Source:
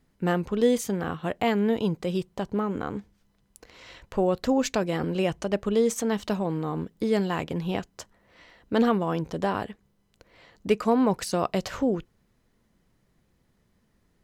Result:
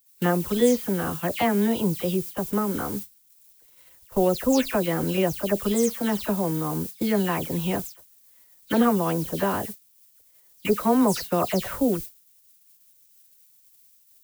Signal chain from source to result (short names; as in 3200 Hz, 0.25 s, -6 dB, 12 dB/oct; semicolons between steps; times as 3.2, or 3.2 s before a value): spectral delay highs early, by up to 0.148 s; added noise violet -39 dBFS; gate -35 dBFS, range -28 dB; gain +2.5 dB